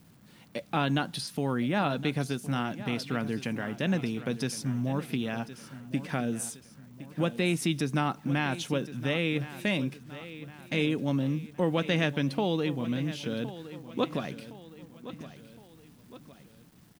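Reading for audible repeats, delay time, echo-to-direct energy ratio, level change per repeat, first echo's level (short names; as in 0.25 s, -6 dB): 3, 1.064 s, -13.5 dB, -6.5 dB, -14.5 dB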